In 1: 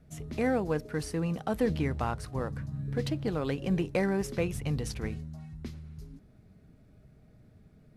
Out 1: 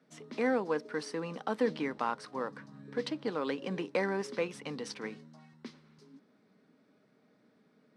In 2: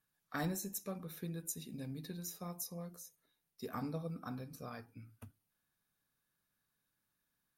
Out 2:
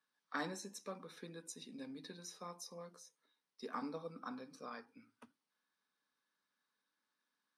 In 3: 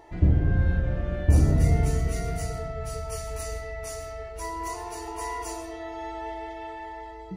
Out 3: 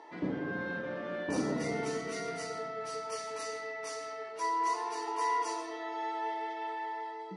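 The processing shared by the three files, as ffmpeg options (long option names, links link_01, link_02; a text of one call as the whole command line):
ffmpeg -i in.wav -af "highpass=frequency=250:width=0.5412,highpass=frequency=250:width=1.3066,equalizer=frequency=350:width_type=q:width=4:gain=-6,equalizer=frequency=680:width_type=q:width=4:gain=-7,equalizer=frequency=1000:width_type=q:width=4:gain=4,equalizer=frequency=2600:width_type=q:width=4:gain=-3,equalizer=frequency=7000:width_type=q:width=4:gain=-9,lowpass=frequency=7700:width=0.5412,lowpass=frequency=7700:width=1.3066,volume=1dB" out.wav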